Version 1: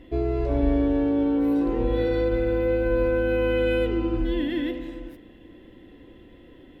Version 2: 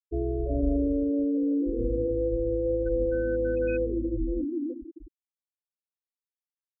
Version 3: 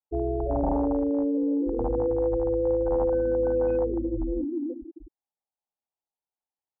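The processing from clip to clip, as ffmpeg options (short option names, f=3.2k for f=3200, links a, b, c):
-af "afftfilt=real='re*gte(hypot(re,im),0.158)':imag='im*gte(hypot(re,im),0.158)':win_size=1024:overlap=0.75,volume=-3.5dB"
-af "aeval=exprs='0.1*(abs(mod(val(0)/0.1+3,4)-2)-1)':c=same,acontrast=62,lowpass=f=820:t=q:w=4.9,volume=-7dB"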